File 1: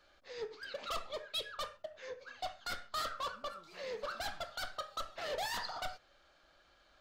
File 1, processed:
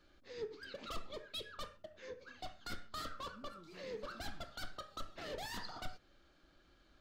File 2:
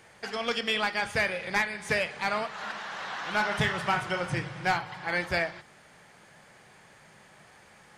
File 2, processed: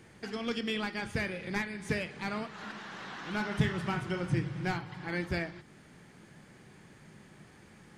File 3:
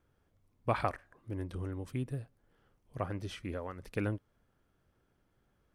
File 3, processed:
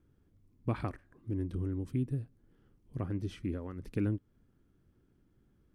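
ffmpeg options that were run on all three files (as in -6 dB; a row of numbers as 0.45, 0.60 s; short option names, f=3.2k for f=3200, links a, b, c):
-filter_complex "[0:a]asplit=2[a][b];[b]acompressor=threshold=-42dB:ratio=6,volume=-2dB[c];[a][c]amix=inputs=2:normalize=0,lowshelf=f=440:t=q:w=1.5:g=9.5,volume=-9dB"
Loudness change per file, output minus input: -6.0, -5.5, +1.5 LU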